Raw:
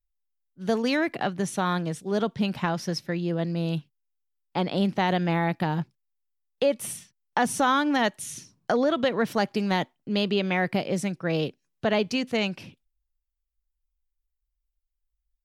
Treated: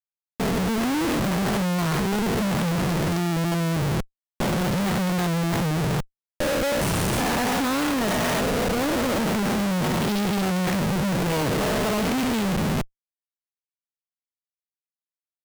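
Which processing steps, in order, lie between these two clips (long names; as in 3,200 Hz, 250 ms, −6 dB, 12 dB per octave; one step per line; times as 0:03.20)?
spectrum averaged block by block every 400 ms
comparator with hysteresis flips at −39 dBFS
level +9 dB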